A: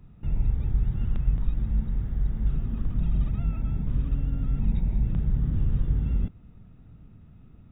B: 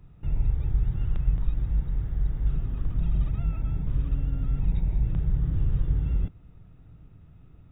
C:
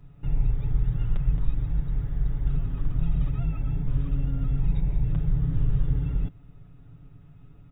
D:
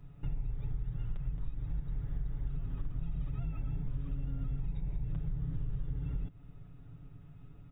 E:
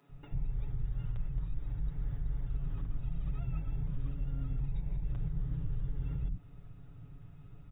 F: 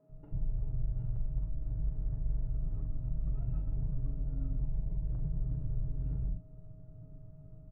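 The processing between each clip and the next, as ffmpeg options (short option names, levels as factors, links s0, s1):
-af "equalizer=f=220:w=6:g=-14"
-af "aecho=1:1:7.1:0.69"
-af "acompressor=threshold=0.0355:ratio=6,volume=0.75"
-filter_complex "[0:a]acrossover=split=240[s0][s1];[s0]adelay=90[s2];[s2][s1]amix=inputs=2:normalize=0,volume=1.12"
-filter_complex "[0:a]aeval=exprs='val(0)+0.000794*sin(2*PI*630*n/s)':c=same,adynamicsmooth=sensitivity=2:basefreq=600,asplit=2[s0][s1];[s1]adelay=41,volume=0.376[s2];[s0][s2]amix=inputs=2:normalize=0"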